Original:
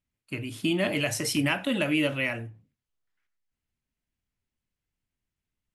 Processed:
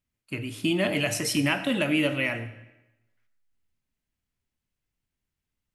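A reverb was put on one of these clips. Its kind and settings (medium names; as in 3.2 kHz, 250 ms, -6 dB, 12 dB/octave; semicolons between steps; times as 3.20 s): algorithmic reverb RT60 0.96 s, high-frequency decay 0.9×, pre-delay 35 ms, DRR 12.5 dB; trim +1 dB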